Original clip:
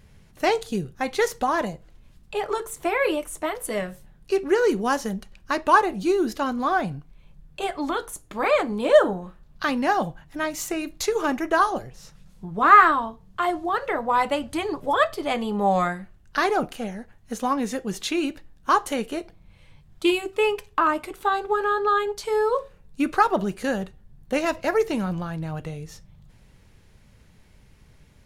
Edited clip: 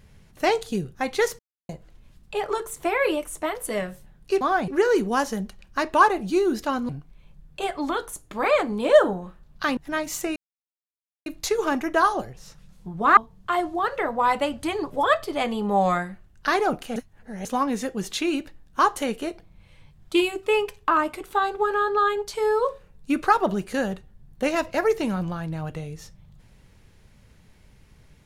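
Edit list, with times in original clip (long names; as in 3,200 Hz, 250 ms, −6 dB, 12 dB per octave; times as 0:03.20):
0:01.39–0:01.69: silence
0:06.62–0:06.89: move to 0:04.41
0:09.77–0:10.24: remove
0:10.83: splice in silence 0.90 s
0:12.74–0:13.07: remove
0:16.86–0:17.35: reverse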